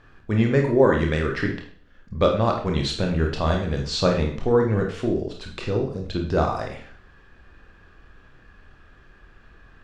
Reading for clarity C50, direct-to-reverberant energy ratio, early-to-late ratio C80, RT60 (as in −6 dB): 6.5 dB, 1.5 dB, 11.0 dB, 0.50 s